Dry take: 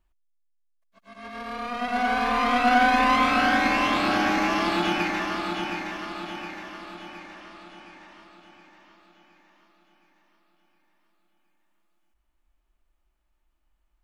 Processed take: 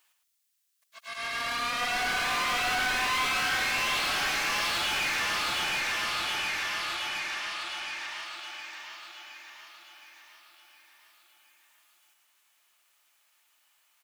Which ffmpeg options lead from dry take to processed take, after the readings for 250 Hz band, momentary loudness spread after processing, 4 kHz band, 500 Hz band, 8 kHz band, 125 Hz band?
-18.5 dB, 16 LU, +3.5 dB, -10.0 dB, +8.5 dB, -8.0 dB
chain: -filter_complex "[0:a]aderivative,asplit=2[a][b];[b]highpass=f=720:p=1,volume=32dB,asoftclip=type=tanh:threshold=-22dB[c];[a][c]amix=inputs=2:normalize=0,lowpass=f=3.9k:p=1,volume=-6dB,aecho=1:1:111:0.473"

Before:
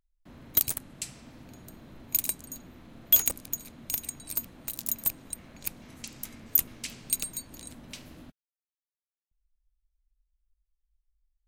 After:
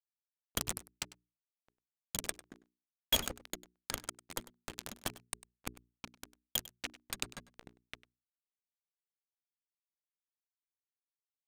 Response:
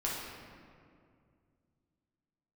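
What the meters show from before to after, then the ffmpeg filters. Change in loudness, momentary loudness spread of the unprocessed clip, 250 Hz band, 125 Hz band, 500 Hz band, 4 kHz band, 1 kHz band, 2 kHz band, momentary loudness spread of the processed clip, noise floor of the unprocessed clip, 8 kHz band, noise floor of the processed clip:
-11.0 dB, 20 LU, -5.0 dB, -5.0 dB, +1.0 dB, +1.0 dB, +2.5 dB, +0.5 dB, 20 LU, under -85 dBFS, -9.0 dB, under -85 dBFS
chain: -filter_complex "[0:a]aeval=exprs='val(0)*gte(abs(val(0)),0.0266)':c=same,alimiter=limit=-13dB:level=0:latency=1:release=154,adynamicsmooth=sensitivity=5.5:basefreq=1.1k,bandreject=f=60:t=h:w=6,bandreject=f=120:t=h:w=6,bandreject=f=180:t=h:w=6,bandreject=f=240:t=h:w=6,bandreject=f=300:t=h:w=6,bandreject=f=360:t=h:w=6,bandreject=f=420:t=h:w=6,asplit=2[a][b];[b]aecho=0:1:99:0.119[c];[a][c]amix=inputs=2:normalize=0,volume=4.5dB"

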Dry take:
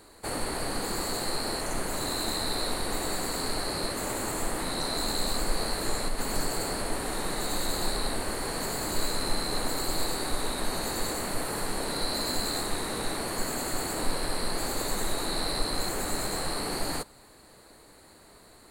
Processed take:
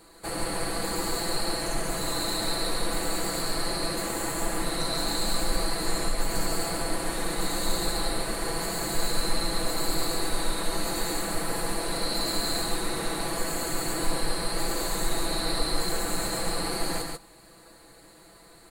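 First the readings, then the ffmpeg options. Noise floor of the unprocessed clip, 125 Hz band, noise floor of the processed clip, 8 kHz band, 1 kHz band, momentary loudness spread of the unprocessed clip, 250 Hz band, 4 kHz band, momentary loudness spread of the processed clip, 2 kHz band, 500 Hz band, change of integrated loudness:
-54 dBFS, +2.0 dB, -53 dBFS, +1.5 dB, +1.0 dB, 3 LU, +2.0 dB, +1.5 dB, 2 LU, +1.5 dB, +1.5 dB, +1.5 dB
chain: -filter_complex "[0:a]bandreject=f=890:w=28,aecho=1:1:6:0.65,asplit=2[a][b];[b]aecho=0:1:139:0.668[c];[a][c]amix=inputs=2:normalize=0,volume=-1.5dB"

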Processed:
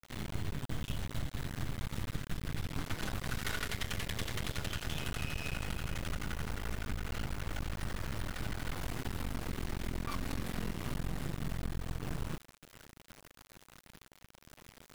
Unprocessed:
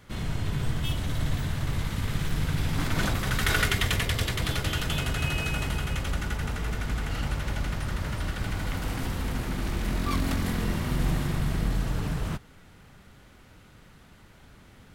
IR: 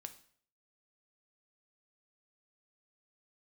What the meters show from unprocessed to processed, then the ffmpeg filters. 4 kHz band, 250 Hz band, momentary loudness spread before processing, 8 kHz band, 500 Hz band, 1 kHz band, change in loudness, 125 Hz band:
-10.0 dB, -9.5 dB, 6 LU, -9.0 dB, -9.0 dB, -9.5 dB, -10.5 dB, -11.0 dB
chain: -af "acrusher=bits=5:dc=4:mix=0:aa=0.000001,aeval=exprs='max(val(0),0)':c=same,acompressor=threshold=-29dB:ratio=6,volume=-2dB"

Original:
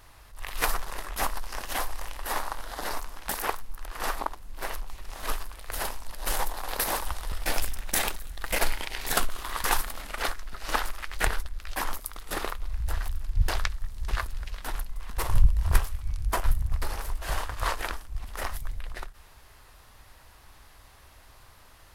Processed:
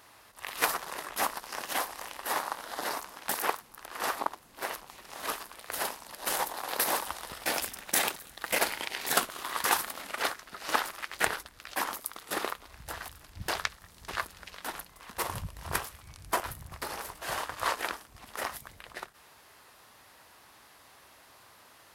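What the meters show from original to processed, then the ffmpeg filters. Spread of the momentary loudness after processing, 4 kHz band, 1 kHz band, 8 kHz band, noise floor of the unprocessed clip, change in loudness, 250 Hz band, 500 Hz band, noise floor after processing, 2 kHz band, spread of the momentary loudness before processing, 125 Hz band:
14 LU, 0.0 dB, 0.0 dB, 0.0 dB, -53 dBFS, -1.5 dB, -1.5 dB, 0.0 dB, -57 dBFS, 0.0 dB, 10 LU, -15.0 dB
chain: -af "highpass=190"

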